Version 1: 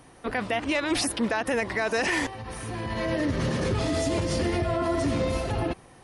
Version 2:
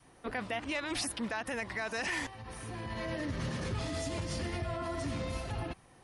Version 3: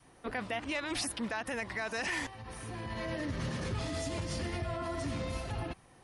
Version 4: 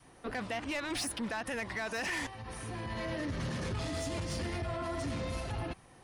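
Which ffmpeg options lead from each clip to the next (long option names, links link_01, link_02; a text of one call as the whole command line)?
ffmpeg -i in.wav -af "adynamicequalizer=threshold=0.00891:dfrequency=410:dqfactor=0.97:tfrequency=410:tqfactor=0.97:attack=5:release=100:ratio=0.375:range=3.5:mode=cutabove:tftype=bell,volume=-7.5dB" out.wav
ffmpeg -i in.wav -af anull out.wav
ffmpeg -i in.wav -af "asoftclip=type=tanh:threshold=-31.5dB,volume=2dB" out.wav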